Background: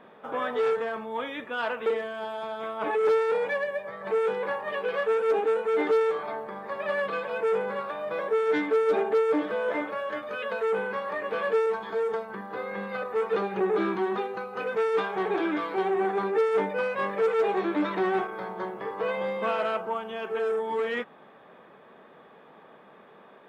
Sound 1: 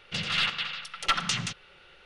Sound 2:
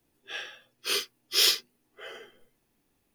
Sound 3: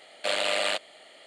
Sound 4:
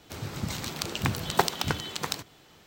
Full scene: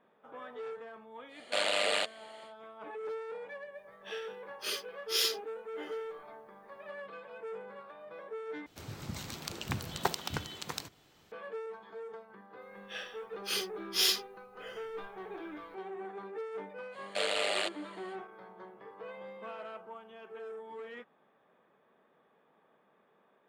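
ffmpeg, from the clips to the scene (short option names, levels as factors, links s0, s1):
-filter_complex "[3:a]asplit=2[s0][s1];[2:a]asplit=2[s2][s3];[0:a]volume=0.15[s4];[s3]asubboost=boost=7.5:cutoff=150[s5];[s4]asplit=2[s6][s7];[s6]atrim=end=8.664[s8];[4:a]atrim=end=2.66,asetpts=PTS-STARTPTS,volume=0.398[s9];[s7]atrim=start=11.316[s10];[s0]atrim=end=1.26,asetpts=PTS-STARTPTS,volume=0.668,afade=t=in:d=0.1,afade=t=out:st=1.16:d=0.1,adelay=1280[s11];[s2]atrim=end=3.14,asetpts=PTS-STARTPTS,volume=0.398,afade=t=in:d=0.004:c=hsin,afade=t=out:st=3.136:d=0.004:c=hsin,adelay=166257S[s12];[s5]atrim=end=3.14,asetpts=PTS-STARTPTS,volume=0.531,afade=t=in:d=0.004:c=hsin,afade=t=out:st=3.136:d=0.004:c=hsin,adelay=12610[s13];[s1]atrim=end=1.26,asetpts=PTS-STARTPTS,volume=0.531,afade=t=in:d=0.05,afade=t=out:st=1.21:d=0.05,adelay=16910[s14];[s8][s9]acrossfade=d=0.004:c1=hsin:c2=hsin[s15];[s15][s10]acrossfade=d=0.004:c1=hsin:c2=hsin[s16];[s16][s11][s12][s13][s14]amix=inputs=5:normalize=0"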